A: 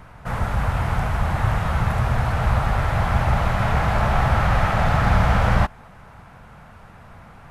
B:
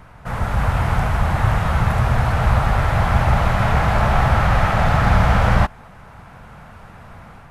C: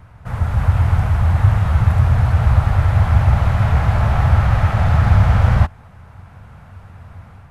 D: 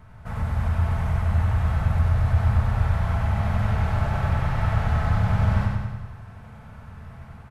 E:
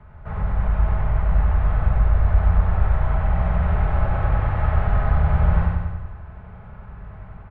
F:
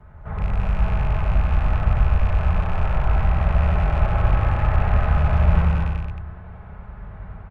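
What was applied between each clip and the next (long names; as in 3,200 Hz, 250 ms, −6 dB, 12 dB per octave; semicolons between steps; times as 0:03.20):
automatic gain control gain up to 4 dB
parametric band 89 Hz +14 dB 1 octave; level −5 dB
downward compressor 1.5 to 1, threshold −24 dBFS, peak gain reduction 6.5 dB; repeating echo 95 ms, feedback 59%, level −3 dB; rectangular room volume 1,900 cubic metres, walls furnished, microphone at 1.5 metres; level −5.5 dB
frequency shifter −32 Hz; high-frequency loss of the air 480 metres; level +4 dB
loose part that buzzes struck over −22 dBFS, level −28 dBFS; on a send: single-tap delay 221 ms −5 dB; on the sum: Opus 32 kbit/s 48,000 Hz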